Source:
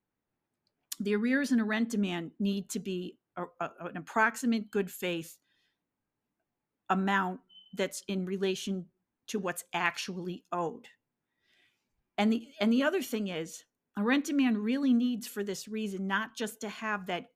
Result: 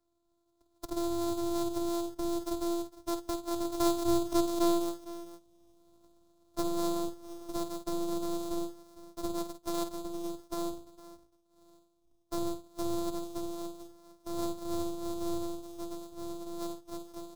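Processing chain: sample sorter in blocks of 256 samples; Doppler pass-by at 4.84, 30 m/s, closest 12 m; low shelf 240 Hz +5 dB; harmonic-percussive split harmonic +4 dB; band shelf 2200 Hz -14.5 dB 1.2 oct; in parallel at -0.5 dB: negative-ratio compressor -44 dBFS, ratio -0.5; on the sum: robotiser 342 Hz; on a send: tapped delay 50/456 ms -9.5/-20 dB; on the sum: three-band squash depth 40%; gain +7.5 dB

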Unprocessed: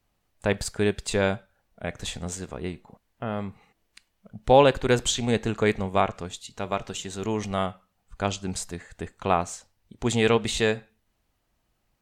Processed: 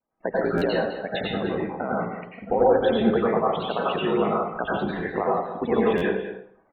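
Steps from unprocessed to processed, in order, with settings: G.711 law mismatch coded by mu; treble ducked by the level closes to 1500 Hz, closed at -18 dBFS; gate with hold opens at -53 dBFS; three-band isolator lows -19 dB, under 200 Hz, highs -19 dB, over 3200 Hz; compressor 2.5:1, threshold -34 dBFS, peak gain reduction 15 dB; loudest bins only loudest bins 32; granular stretch 0.56×, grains 32 ms; wow and flutter 110 cents; brick-wall FIR low-pass 4500 Hz; echo 0.205 s -11.5 dB; plate-style reverb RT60 0.56 s, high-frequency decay 0.75×, pre-delay 80 ms, DRR -5.5 dB; stuck buffer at 0.57/5.97, samples 512, times 3; gain +8.5 dB

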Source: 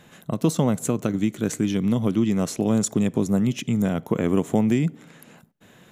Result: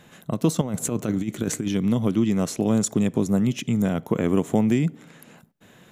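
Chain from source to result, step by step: 0.61–1.68 negative-ratio compressor -24 dBFS, ratio -0.5

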